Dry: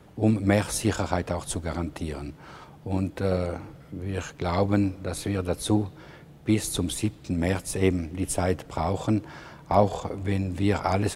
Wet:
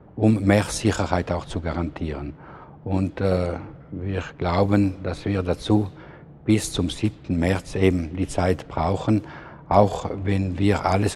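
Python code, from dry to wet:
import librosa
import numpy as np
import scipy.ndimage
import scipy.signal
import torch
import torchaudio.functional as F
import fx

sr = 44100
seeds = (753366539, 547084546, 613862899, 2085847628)

y = fx.env_lowpass(x, sr, base_hz=1100.0, full_db=-19.5)
y = y * librosa.db_to_amplitude(4.0)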